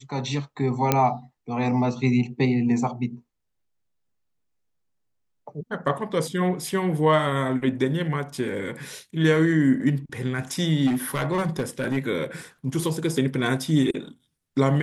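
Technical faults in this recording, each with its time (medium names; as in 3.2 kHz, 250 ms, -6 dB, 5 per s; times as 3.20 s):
0.92 s: pop -4 dBFS
10.86–11.98 s: clipped -19.5 dBFS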